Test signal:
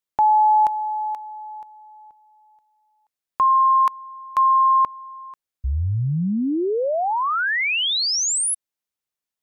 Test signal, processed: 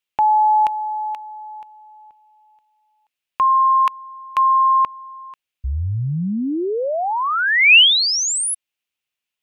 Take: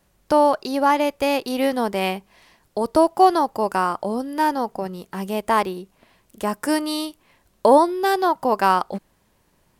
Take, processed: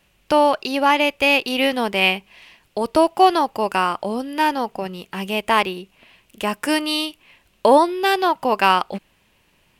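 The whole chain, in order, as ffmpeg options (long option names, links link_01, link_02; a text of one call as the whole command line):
ffmpeg -i in.wav -af "equalizer=frequency=2700:width_type=o:width=0.82:gain=14" out.wav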